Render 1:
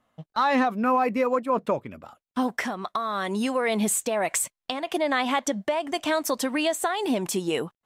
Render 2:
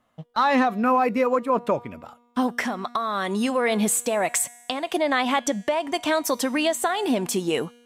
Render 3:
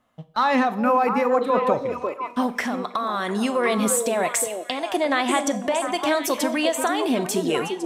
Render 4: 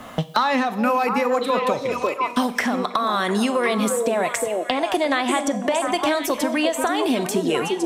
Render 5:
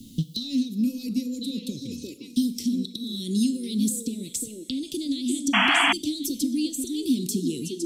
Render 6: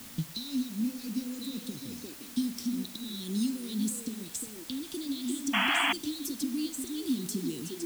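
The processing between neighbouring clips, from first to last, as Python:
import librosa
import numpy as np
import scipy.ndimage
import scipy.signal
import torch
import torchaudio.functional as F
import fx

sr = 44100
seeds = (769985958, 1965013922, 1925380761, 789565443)

y1 = fx.comb_fb(x, sr, f0_hz=240.0, decay_s=1.3, harmonics='all', damping=0.0, mix_pct=50)
y1 = F.gain(torch.from_numpy(y1), 8.0).numpy()
y2 = fx.echo_stepped(y1, sr, ms=350, hz=400.0, octaves=1.4, feedback_pct=70, wet_db=-2)
y2 = fx.rev_schroeder(y2, sr, rt60_s=0.47, comb_ms=29, drr_db=14.0)
y3 = fx.band_squash(y2, sr, depth_pct=100)
y4 = scipy.signal.sosfilt(scipy.signal.ellip(3, 1.0, 50, [290.0, 4000.0], 'bandstop', fs=sr, output='sos'), y3)
y4 = fx.spec_paint(y4, sr, seeds[0], shape='noise', start_s=5.53, length_s=0.4, low_hz=650.0, high_hz=3400.0, level_db=-20.0)
y5 = fx.dmg_noise_colour(y4, sr, seeds[1], colour='white', level_db=-41.0)
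y5 = F.gain(torch.from_numpy(y5), -7.0).numpy()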